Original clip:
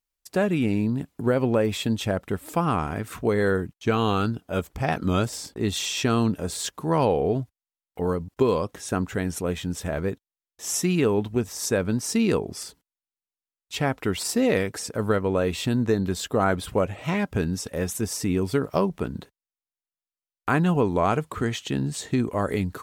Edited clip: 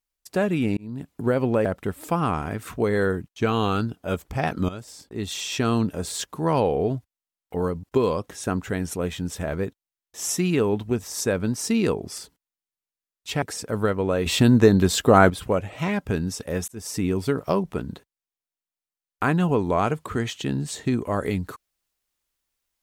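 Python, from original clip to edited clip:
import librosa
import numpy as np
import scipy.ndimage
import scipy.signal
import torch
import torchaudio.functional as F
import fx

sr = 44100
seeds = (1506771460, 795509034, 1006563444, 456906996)

y = fx.edit(x, sr, fx.fade_in_span(start_s=0.77, length_s=0.38),
    fx.cut(start_s=1.65, length_s=0.45),
    fx.fade_in_from(start_s=5.14, length_s=1.03, floor_db=-15.5),
    fx.cut(start_s=13.87, length_s=0.81),
    fx.clip_gain(start_s=15.52, length_s=1.04, db=7.5),
    fx.fade_in_span(start_s=17.94, length_s=0.28), tone=tone)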